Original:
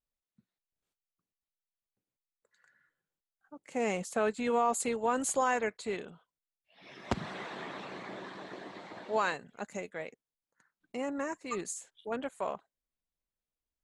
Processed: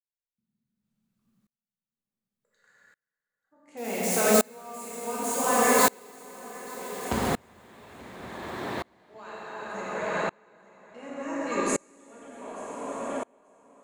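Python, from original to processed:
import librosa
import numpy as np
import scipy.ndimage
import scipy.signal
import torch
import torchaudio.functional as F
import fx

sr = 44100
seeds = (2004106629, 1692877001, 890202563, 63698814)

y = fx.crossing_spikes(x, sr, level_db=-27.0, at=(3.77, 6.11))
y = fx.echo_feedback(y, sr, ms=884, feedback_pct=35, wet_db=-10)
y = fx.rev_plate(y, sr, seeds[0], rt60_s=4.9, hf_ratio=0.65, predelay_ms=0, drr_db=-7.5)
y = fx.tremolo_decay(y, sr, direction='swelling', hz=0.68, depth_db=33)
y = y * librosa.db_to_amplitude(5.0)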